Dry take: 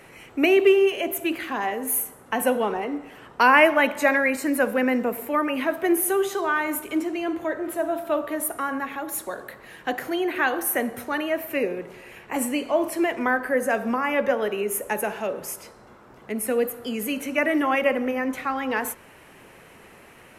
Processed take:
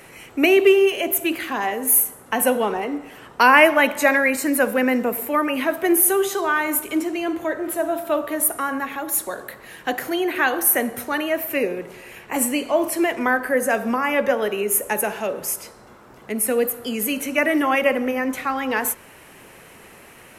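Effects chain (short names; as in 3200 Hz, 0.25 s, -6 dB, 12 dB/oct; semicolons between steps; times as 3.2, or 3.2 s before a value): high shelf 4800 Hz +7 dB; gain +2.5 dB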